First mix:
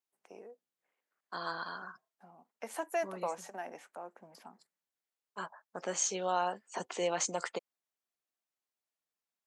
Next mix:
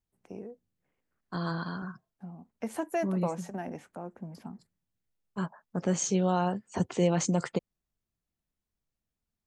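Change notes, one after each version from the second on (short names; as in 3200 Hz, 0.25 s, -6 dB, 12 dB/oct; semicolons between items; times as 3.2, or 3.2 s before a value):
master: remove HPF 610 Hz 12 dB/oct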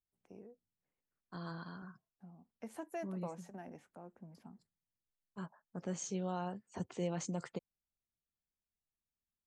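first voice -12.0 dB; second voice -12.0 dB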